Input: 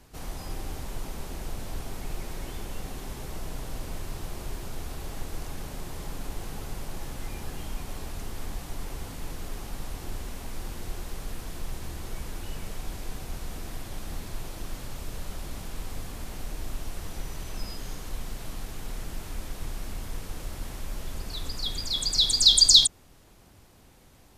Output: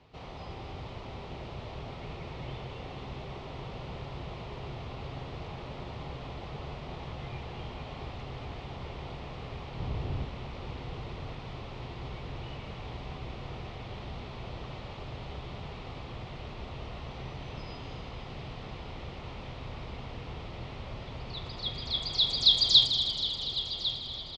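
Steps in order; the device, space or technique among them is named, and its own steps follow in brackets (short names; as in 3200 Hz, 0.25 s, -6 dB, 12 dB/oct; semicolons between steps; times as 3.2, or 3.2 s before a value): frequency-shifting delay pedal into a guitar cabinet (frequency-shifting echo 0.16 s, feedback 61%, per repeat -74 Hz, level -12 dB; speaker cabinet 84–3800 Hz, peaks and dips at 200 Hz -7 dB, 300 Hz -8 dB, 1600 Hz -10 dB); 9.77–10.24 low shelf 320 Hz +11.5 dB; echo with dull and thin repeats by turns 0.12 s, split 1500 Hz, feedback 84%, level -10.5 dB; dark delay 1.1 s, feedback 84%, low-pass 3900 Hz, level -10 dB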